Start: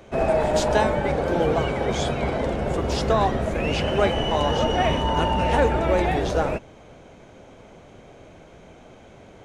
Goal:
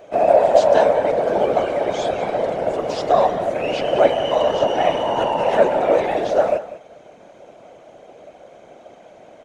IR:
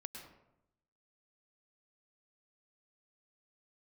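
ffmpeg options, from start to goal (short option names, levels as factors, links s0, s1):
-filter_complex "[0:a]acrossover=split=7200[s0][s1];[s1]acompressor=threshold=0.002:ratio=4:attack=1:release=60[s2];[s0][s2]amix=inputs=2:normalize=0,highpass=230,equalizer=f=610:t=o:w=0.42:g=11.5,afftfilt=real='hypot(re,im)*cos(2*PI*random(0))':imag='hypot(re,im)*sin(2*PI*random(1))':win_size=512:overlap=0.75,asplit=2[s3][s4];[s4]aecho=0:1:195:0.178[s5];[s3][s5]amix=inputs=2:normalize=0,volume=1.78"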